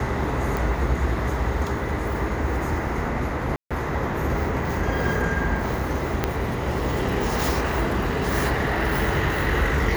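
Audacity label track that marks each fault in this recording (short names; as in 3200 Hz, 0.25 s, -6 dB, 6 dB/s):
0.570000	0.570000	pop
3.560000	3.710000	gap 0.146 s
6.240000	6.240000	pop -7 dBFS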